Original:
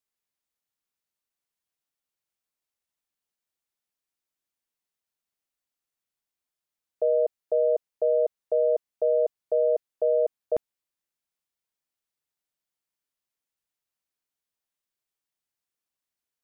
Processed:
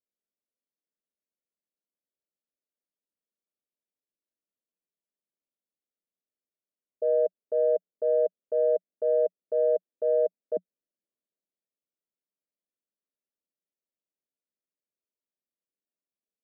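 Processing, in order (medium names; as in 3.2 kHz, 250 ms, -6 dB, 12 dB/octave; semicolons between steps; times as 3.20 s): Chebyshev band-pass 180–630 Hz, order 4; transient shaper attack -4 dB, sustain +3 dB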